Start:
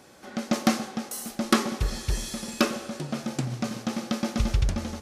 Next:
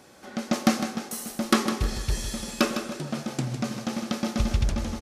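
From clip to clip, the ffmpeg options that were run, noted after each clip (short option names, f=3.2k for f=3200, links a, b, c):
-af "aecho=1:1:156|312|468:0.355|0.106|0.0319"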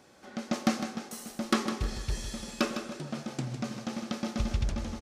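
-af "equalizer=f=12k:t=o:w=0.66:g=-7,volume=-5.5dB"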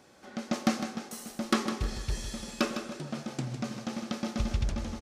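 -af anull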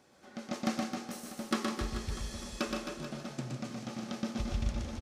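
-af "aecho=1:1:120|264|436.8|644.2|893:0.631|0.398|0.251|0.158|0.1,volume=-6dB"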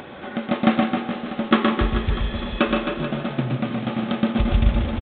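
-filter_complex "[0:a]asplit=2[a][b];[b]acompressor=mode=upward:threshold=-36dB:ratio=2.5,volume=2dB[c];[a][c]amix=inputs=2:normalize=0,aresample=8000,aresample=44100,volume=8dB"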